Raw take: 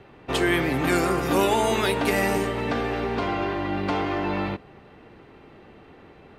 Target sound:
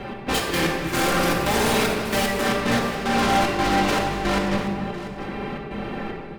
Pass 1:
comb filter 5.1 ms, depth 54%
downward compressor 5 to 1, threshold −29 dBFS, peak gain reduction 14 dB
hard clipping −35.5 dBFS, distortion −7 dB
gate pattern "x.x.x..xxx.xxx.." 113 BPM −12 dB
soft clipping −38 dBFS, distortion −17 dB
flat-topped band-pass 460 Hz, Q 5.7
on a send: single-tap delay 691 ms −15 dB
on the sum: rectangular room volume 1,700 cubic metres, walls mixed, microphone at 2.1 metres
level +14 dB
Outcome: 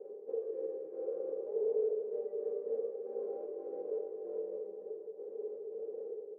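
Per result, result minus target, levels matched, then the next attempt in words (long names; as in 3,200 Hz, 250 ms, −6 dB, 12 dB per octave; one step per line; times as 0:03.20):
downward compressor: peak gain reduction +14 dB; soft clipping: distortion +14 dB; 500 Hz band +7.5 dB
comb filter 5.1 ms, depth 54%
hard clipping −35.5 dBFS, distortion −3 dB
gate pattern "x.x.x..xxx.xxx.." 113 BPM −12 dB
soft clipping −38 dBFS, distortion −18 dB
flat-topped band-pass 460 Hz, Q 5.7
on a send: single-tap delay 691 ms −15 dB
on the sum: rectangular room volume 1,700 cubic metres, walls mixed, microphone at 2.1 metres
level +14 dB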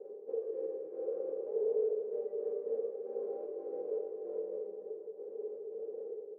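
soft clipping: distortion +13 dB; 500 Hz band +7.5 dB
comb filter 5.1 ms, depth 54%
hard clipping −35.5 dBFS, distortion −3 dB
gate pattern "x.x.x..xxx.xxx.." 113 BPM −12 dB
soft clipping −30.5 dBFS, distortion −31 dB
flat-topped band-pass 460 Hz, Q 5.7
on a send: single-tap delay 691 ms −15 dB
on the sum: rectangular room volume 1,700 cubic metres, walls mixed, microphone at 2.1 metres
level +14 dB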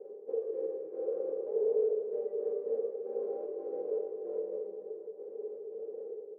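500 Hz band +7.5 dB
comb filter 5.1 ms, depth 54%
hard clipping −35.5 dBFS, distortion −3 dB
gate pattern "x.x.x..xxx.xxx.." 113 BPM −12 dB
soft clipping −30.5 dBFS, distortion −31 dB
on a send: single-tap delay 691 ms −15 dB
on the sum: rectangular room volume 1,700 cubic metres, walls mixed, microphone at 2.1 metres
level +14 dB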